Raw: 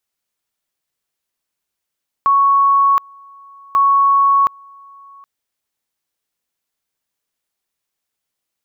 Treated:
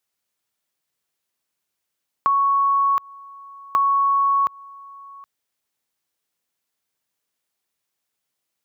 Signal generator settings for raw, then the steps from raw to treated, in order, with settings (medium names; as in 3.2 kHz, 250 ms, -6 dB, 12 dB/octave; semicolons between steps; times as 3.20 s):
two-level tone 1.11 kHz -9 dBFS, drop 29 dB, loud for 0.72 s, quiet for 0.77 s, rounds 2
high-pass 69 Hz; compression, threshold -17 dBFS